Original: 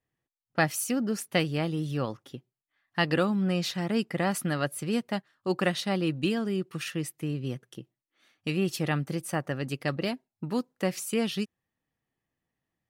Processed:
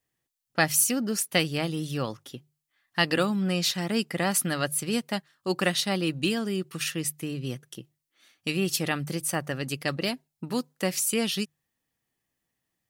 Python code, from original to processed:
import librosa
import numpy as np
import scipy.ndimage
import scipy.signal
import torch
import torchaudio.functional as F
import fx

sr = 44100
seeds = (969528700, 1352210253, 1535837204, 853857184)

y = fx.high_shelf(x, sr, hz=3200.0, db=11.0)
y = fx.hum_notches(y, sr, base_hz=50, count=3)